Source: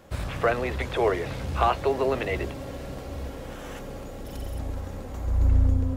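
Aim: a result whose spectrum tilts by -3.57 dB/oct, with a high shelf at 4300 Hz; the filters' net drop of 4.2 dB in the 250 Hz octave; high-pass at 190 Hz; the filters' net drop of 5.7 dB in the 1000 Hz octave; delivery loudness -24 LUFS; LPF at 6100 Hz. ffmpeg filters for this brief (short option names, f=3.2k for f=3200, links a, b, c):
-af "highpass=190,lowpass=6.1k,equalizer=f=250:t=o:g=-3.5,equalizer=f=1k:t=o:g=-8,highshelf=f=4.3k:g=3.5,volume=8dB"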